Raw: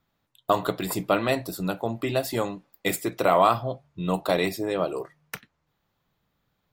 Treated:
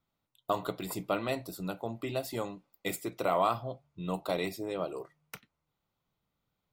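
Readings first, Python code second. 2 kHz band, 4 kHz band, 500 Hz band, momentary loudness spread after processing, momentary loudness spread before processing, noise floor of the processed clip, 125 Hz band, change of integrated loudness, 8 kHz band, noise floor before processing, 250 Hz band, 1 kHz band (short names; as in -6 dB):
-9.5 dB, -8.5 dB, -8.5 dB, 14 LU, 14 LU, -85 dBFS, -8.5 dB, -8.5 dB, -8.5 dB, -76 dBFS, -8.5 dB, -8.5 dB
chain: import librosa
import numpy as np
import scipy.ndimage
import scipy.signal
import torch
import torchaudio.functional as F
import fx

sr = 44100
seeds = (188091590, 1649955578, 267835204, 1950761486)

y = fx.notch(x, sr, hz=1700.0, q=6.4)
y = F.gain(torch.from_numpy(y), -8.5).numpy()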